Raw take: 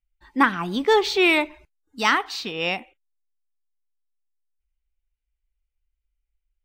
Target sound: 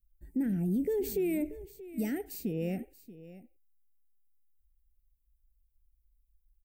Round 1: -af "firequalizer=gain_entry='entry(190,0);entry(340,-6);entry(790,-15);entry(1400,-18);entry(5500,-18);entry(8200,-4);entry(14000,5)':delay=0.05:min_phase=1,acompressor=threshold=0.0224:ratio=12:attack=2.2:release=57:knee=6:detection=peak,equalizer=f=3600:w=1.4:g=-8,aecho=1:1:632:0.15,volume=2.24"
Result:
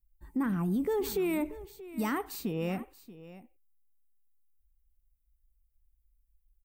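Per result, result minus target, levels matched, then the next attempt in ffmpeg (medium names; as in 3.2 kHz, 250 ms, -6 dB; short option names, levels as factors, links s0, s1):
1 kHz band +13.5 dB; 4 kHz band +6.5 dB
-af "firequalizer=gain_entry='entry(190,0);entry(340,-6);entry(790,-15);entry(1400,-18);entry(5500,-18);entry(8200,-4);entry(14000,5)':delay=0.05:min_phase=1,acompressor=threshold=0.0224:ratio=12:attack=2.2:release=57:knee=6:detection=peak,asuperstop=centerf=1100:order=4:qfactor=0.84,equalizer=f=3600:w=1.4:g=-8,aecho=1:1:632:0.15,volume=2.24"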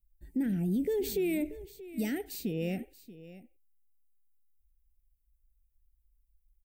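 4 kHz band +7.0 dB
-af "firequalizer=gain_entry='entry(190,0);entry(340,-6);entry(790,-15);entry(1400,-18);entry(5500,-18);entry(8200,-4);entry(14000,5)':delay=0.05:min_phase=1,acompressor=threshold=0.0224:ratio=12:attack=2.2:release=57:knee=6:detection=peak,asuperstop=centerf=1100:order=4:qfactor=0.84,equalizer=f=3600:w=1.4:g=-18.5,aecho=1:1:632:0.15,volume=2.24"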